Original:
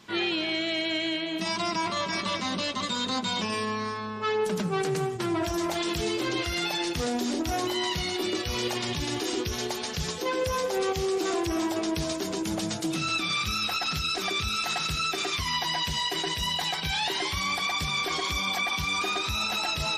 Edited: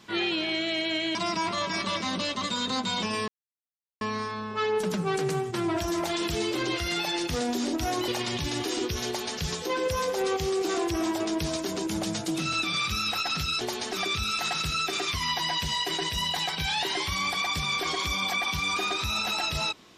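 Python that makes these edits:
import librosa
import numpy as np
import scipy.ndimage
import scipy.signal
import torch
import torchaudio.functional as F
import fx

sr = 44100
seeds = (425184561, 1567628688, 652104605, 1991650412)

y = fx.edit(x, sr, fx.cut(start_s=1.15, length_s=0.39),
    fx.insert_silence(at_s=3.67, length_s=0.73),
    fx.cut(start_s=7.74, length_s=0.9),
    fx.duplicate(start_s=9.63, length_s=0.31, to_s=14.17), tone=tone)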